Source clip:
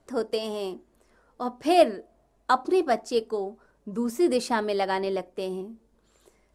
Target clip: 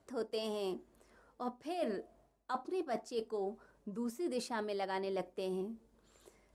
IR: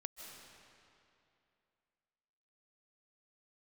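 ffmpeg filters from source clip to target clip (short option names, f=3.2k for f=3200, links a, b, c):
-af "areverse,acompressor=threshold=-32dB:ratio=10,areverse,highpass=42,volume=-2.5dB"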